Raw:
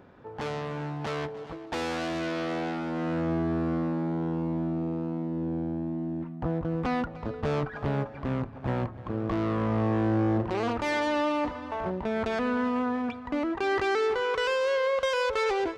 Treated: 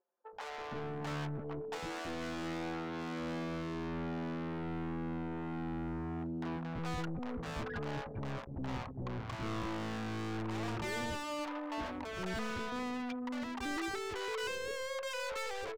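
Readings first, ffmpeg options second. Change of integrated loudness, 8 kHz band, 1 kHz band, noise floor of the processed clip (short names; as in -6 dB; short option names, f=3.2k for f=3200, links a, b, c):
-10.0 dB, n/a, -9.5 dB, -44 dBFS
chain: -filter_complex "[0:a]anlmdn=1.58,aeval=exprs='(tanh(79.4*val(0)+0.15)-tanh(0.15))/79.4':c=same,aresample=16000,aresample=44100,aeval=exprs='0.0126*(abs(mod(val(0)/0.0126+3,4)-2)-1)':c=same,acrossover=split=540[a][b];[a]adelay=330[c];[c][b]amix=inputs=2:normalize=0,volume=2.5dB"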